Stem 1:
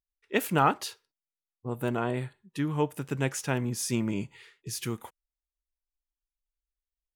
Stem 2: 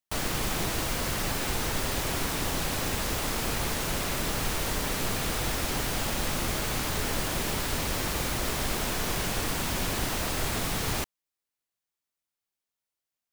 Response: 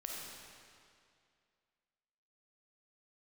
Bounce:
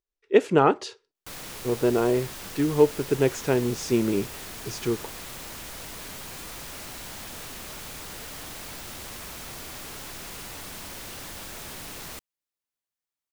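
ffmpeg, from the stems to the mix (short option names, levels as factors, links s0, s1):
-filter_complex "[0:a]lowpass=f=7400:w=0.5412,lowpass=f=7400:w=1.3066,equalizer=f=410:t=o:w=0.88:g=13.5,volume=1[s0];[1:a]aeval=exprs='0.0299*(abs(mod(val(0)/0.0299+3,4)-2)-1)':c=same,adelay=1150,volume=0.631[s1];[s0][s1]amix=inputs=2:normalize=0"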